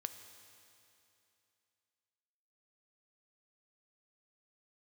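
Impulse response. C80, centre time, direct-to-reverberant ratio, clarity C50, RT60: 10.0 dB, 28 ms, 8.0 dB, 9.0 dB, 2.8 s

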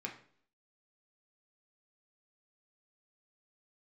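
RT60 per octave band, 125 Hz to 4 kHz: 0.55 s, 0.65 s, 0.60 s, 0.50 s, 0.50 s, 0.50 s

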